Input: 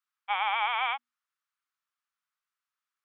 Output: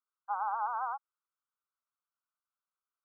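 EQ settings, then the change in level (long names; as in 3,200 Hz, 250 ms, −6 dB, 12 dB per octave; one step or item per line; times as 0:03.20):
linear-phase brick-wall band-pass 370–1,600 Hz
parametric band 980 Hz +4 dB 0.77 octaves
−6.5 dB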